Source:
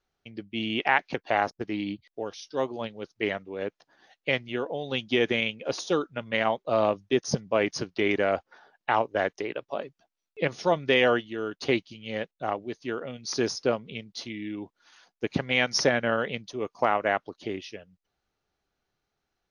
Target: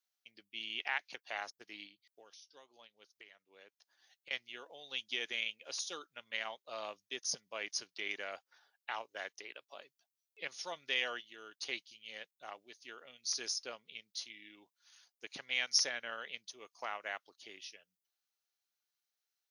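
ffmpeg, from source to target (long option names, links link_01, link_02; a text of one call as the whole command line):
ffmpeg -i in.wav -filter_complex "[0:a]aderivative,asettb=1/sr,asplit=3[link_01][link_02][link_03];[link_01]atrim=end=1.854[link_04];[link_02]atrim=start=1.85:end=4.31,asetpts=PTS-STARTPTS,afade=type=in:duration=0.004:curve=qsin,afade=type=out:start_time=2.456:duration=0.004:curve=qsin,acompressor=threshold=-56dB:ratio=6[link_05];[link_03]atrim=start=4.306[link_06];[link_04][link_05]acrossfade=duration=0.004:curve1=hsin:curve2=qsin[link_07];[link_07][link_06]acrossfade=duration=0.004:curve1=qsin:curve2=hsin" out.wav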